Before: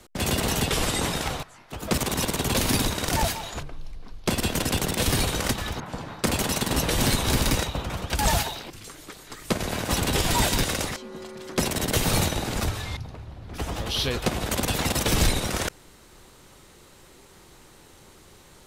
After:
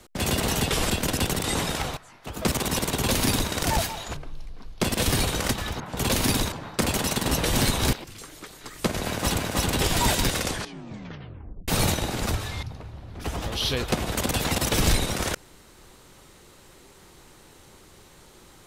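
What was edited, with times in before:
2.42–2.97 s: copy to 5.97 s
4.42–4.96 s: move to 0.90 s
7.38–8.59 s: delete
9.74–10.06 s: loop, 2 plays
10.73 s: tape stop 1.29 s

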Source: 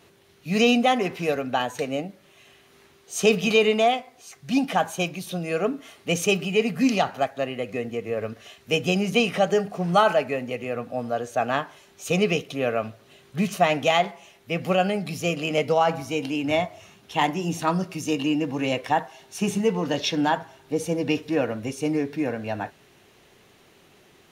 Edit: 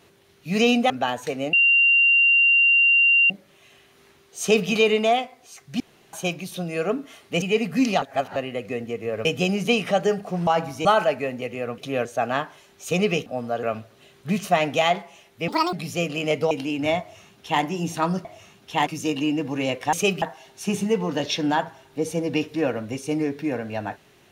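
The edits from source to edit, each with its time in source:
0.90–1.42 s: delete
2.05 s: add tone 2.77 kHz -13.5 dBFS 1.77 s
4.55–4.88 s: room tone
6.17–6.46 s: move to 18.96 s
7.06–7.40 s: reverse
8.29–8.72 s: delete
10.87–11.24 s: swap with 12.45–12.72 s
14.57–15.00 s: speed 173%
15.78–16.16 s: move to 9.94 s
16.66–17.28 s: copy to 17.90 s

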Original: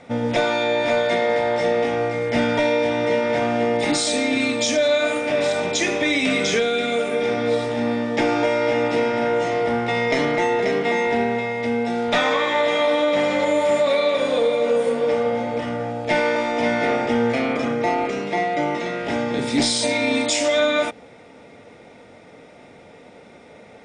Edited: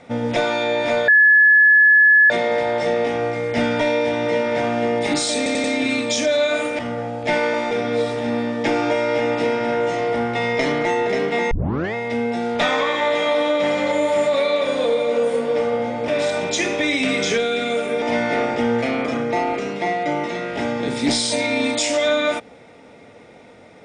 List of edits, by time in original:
1.08 s: add tone 1.71 kHz -8.5 dBFS 1.22 s
4.15 s: stutter 0.09 s, 4 plays
5.30–7.24 s: swap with 15.61–16.53 s
11.04 s: tape start 0.43 s

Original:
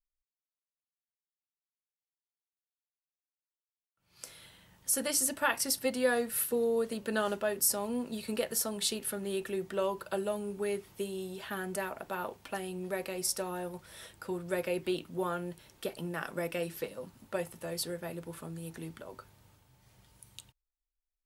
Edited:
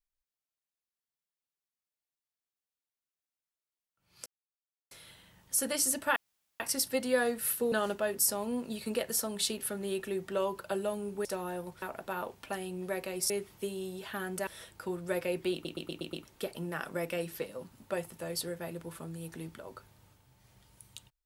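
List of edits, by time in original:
4.26 s: insert silence 0.65 s
5.51 s: insert room tone 0.44 s
6.63–7.14 s: delete
10.67–11.84 s: swap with 13.32–13.89 s
14.95 s: stutter in place 0.12 s, 6 plays

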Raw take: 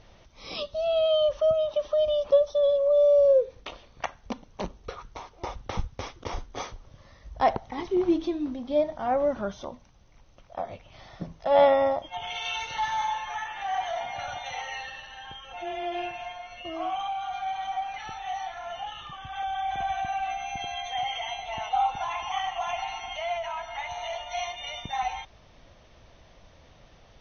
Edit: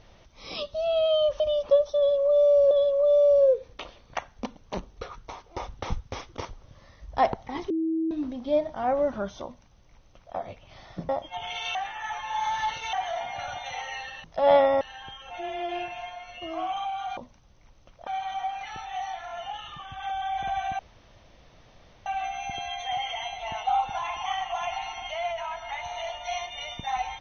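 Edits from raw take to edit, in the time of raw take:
1.40–2.01 s: delete
2.58–3.32 s: loop, 2 plays
6.32–6.68 s: delete
7.93–8.34 s: bleep 323 Hz -23.5 dBFS
9.68–10.58 s: copy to 17.40 s
11.32–11.89 s: move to 15.04 s
12.55–13.73 s: reverse
20.12 s: insert room tone 1.27 s

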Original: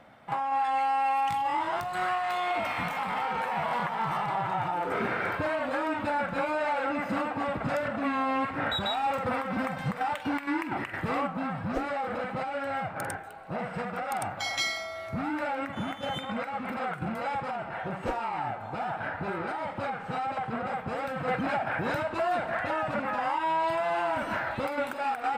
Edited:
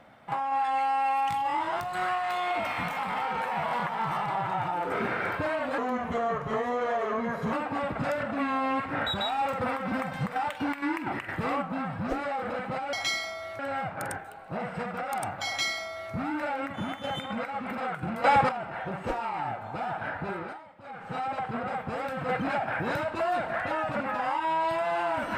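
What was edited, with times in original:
5.78–7.18 s: speed 80%
14.46–15.12 s: copy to 12.58 s
17.23–17.48 s: gain +11 dB
19.14–20.31 s: dip -17 dB, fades 0.49 s equal-power

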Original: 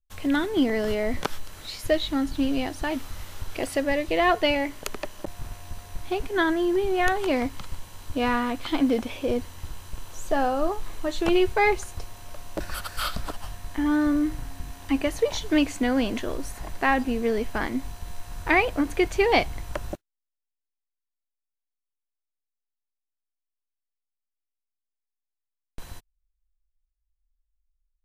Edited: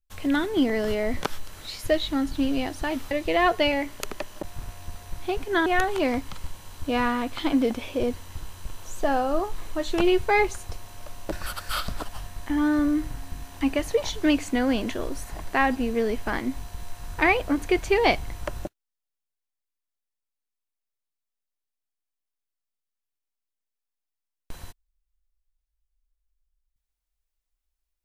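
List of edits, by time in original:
3.11–3.94 s: delete
6.49–6.94 s: delete

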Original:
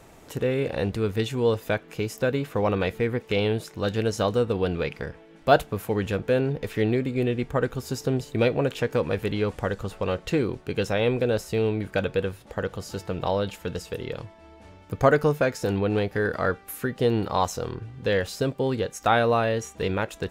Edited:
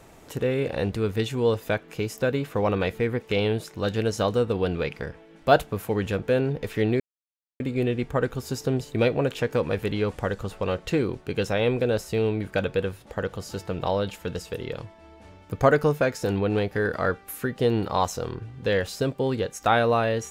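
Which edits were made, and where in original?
7.00 s: insert silence 0.60 s

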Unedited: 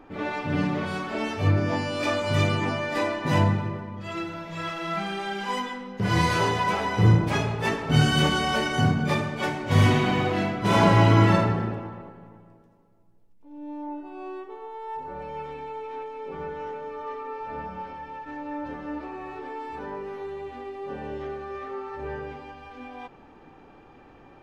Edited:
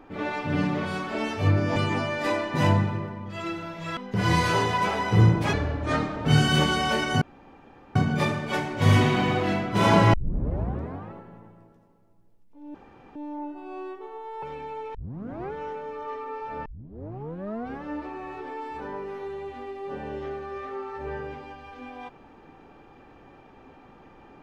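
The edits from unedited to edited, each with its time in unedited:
1.76–2.47 s: delete
4.68–5.83 s: delete
7.39–7.89 s: speed 69%
8.85 s: insert room tone 0.74 s
11.03 s: tape start 0.99 s
13.64 s: insert room tone 0.41 s
14.91–15.41 s: delete
15.93 s: tape start 0.58 s
17.64 s: tape start 1.18 s

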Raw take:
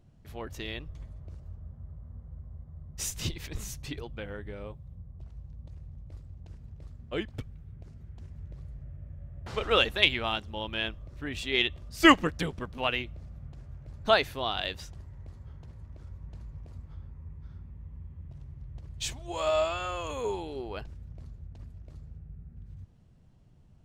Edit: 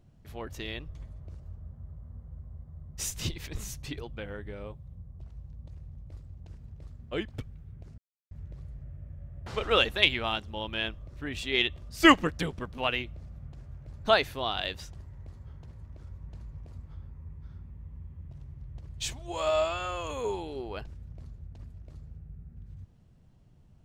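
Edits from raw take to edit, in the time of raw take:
7.98–8.31 s: mute

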